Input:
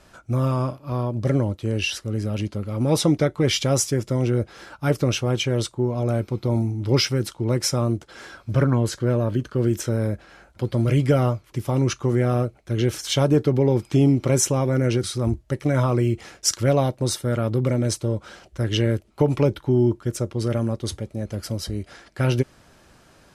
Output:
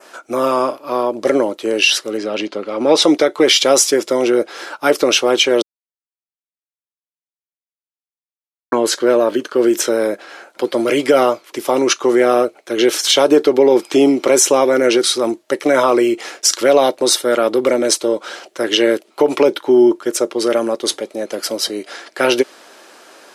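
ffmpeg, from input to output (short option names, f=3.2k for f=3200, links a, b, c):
-filter_complex "[0:a]asettb=1/sr,asplit=3[a][b][c];[a]atrim=end=2.174[d];[b]atrim=start=2.17:end=3.02,asetpts=PTS-STARTPTS,afade=t=in:d=0.004:c=qsin,afade=t=out:st=0.846:d=0.004:c=qsin,lowpass=5k[e];[c]atrim=start=3.016[f];[d][e]acrossfade=d=0.004:c1=hsin:c2=qsin[g];[g][f]acrossfade=d=0.004:c1=qsin:c2=hsin,asplit=3[h][i][j];[h]atrim=end=5.62,asetpts=PTS-STARTPTS,afade=t=out:st=5.616:d=0.004:c=hsin[k];[i]atrim=start=5.62:end=8.72,asetpts=PTS-STARTPTS,volume=0[l];[j]atrim=start=8.72,asetpts=PTS-STARTPTS,afade=t=in:d=0.004:c=hsin[m];[k][l][m]concat=n=3:v=0:a=1,highpass=f=330:w=0.5412,highpass=f=330:w=1.3066,adynamicequalizer=threshold=0.01:dfrequency=3800:dqfactor=1.7:tfrequency=3800:tqfactor=1.7:attack=5:release=100:ratio=0.375:range=2:mode=boostabove:tftype=bell,alimiter=level_in=13.5dB:limit=-1dB:release=50:level=0:latency=1,volume=-1dB"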